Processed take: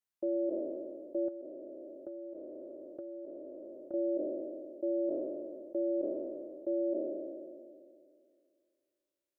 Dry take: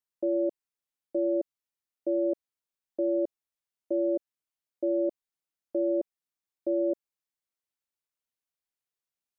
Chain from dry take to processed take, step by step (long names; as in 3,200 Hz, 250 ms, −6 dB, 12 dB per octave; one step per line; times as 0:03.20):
peak hold with a decay on every bin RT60 2.25 s
0:01.28–0:03.94: downward compressor 6 to 1, threshold −37 dBFS, peak gain reduction 12.5 dB
level −5.5 dB